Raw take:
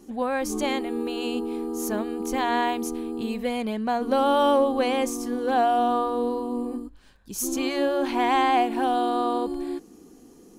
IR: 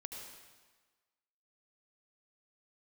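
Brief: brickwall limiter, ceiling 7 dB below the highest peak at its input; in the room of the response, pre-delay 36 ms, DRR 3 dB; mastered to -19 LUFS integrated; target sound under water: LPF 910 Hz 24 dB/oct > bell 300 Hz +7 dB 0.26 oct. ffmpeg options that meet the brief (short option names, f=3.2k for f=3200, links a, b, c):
-filter_complex "[0:a]alimiter=limit=-17dB:level=0:latency=1,asplit=2[a][b];[1:a]atrim=start_sample=2205,adelay=36[c];[b][c]afir=irnorm=-1:irlink=0,volume=-0.5dB[d];[a][d]amix=inputs=2:normalize=0,lowpass=f=910:w=0.5412,lowpass=f=910:w=1.3066,equalizer=f=300:t=o:w=0.26:g=7,volume=6.5dB"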